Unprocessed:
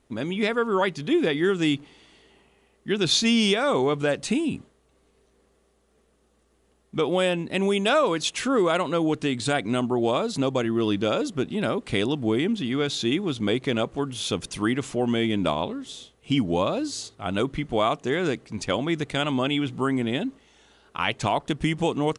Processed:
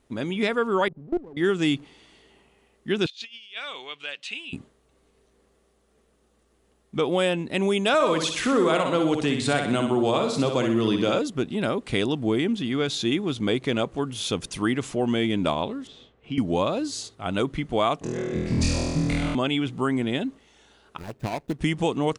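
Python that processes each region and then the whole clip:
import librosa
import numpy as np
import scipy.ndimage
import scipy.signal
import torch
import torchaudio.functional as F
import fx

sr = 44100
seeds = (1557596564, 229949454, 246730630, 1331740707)

y = fx.chain(x, sr, fx.gaussian_blur(sigma=13.0),
    fx.level_steps(step_db=21),
    fx.running_max(window=17), at=(0.88, 1.37))
y = fx.chain(y, sr, fx.bandpass_q(hz=2900.0, q=3.1),
    fx.over_compress(threshold_db=-36.0, ratio=-0.5), at=(3.06, 4.53))
y = fx.chain(y, sr, fx.echo_feedback(ms=62, feedback_pct=47, wet_db=-6.0),
    fx.band_squash(depth_pct=40), at=(7.94, 11.19))
y = fx.chain(y, sr, fx.lowpass(hz=2300.0, slope=12),
    fx.band_squash(depth_pct=40), at=(15.87, 16.38))
y = fx.chain(y, sr, fx.tilt_eq(slope=-2.5),
    fx.over_compress(threshold_db=-29.0, ratio=-0.5),
    fx.room_flutter(wall_m=4.2, rt60_s=1.5), at=(18.01, 19.35))
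y = fx.chain(y, sr, fx.median_filter(points=41),
    fx.high_shelf(hz=5000.0, db=4.0),
    fx.upward_expand(threshold_db=-36.0, expansion=1.5), at=(20.98, 21.59))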